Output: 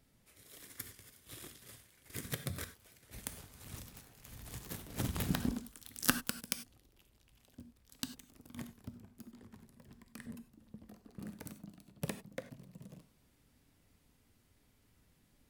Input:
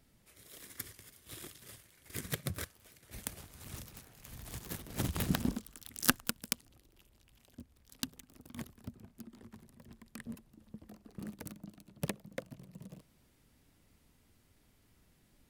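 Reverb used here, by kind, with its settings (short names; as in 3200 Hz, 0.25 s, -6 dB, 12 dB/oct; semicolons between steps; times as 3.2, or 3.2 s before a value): non-linear reverb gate 0.12 s flat, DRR 9.5 dB; gain -2.5 dB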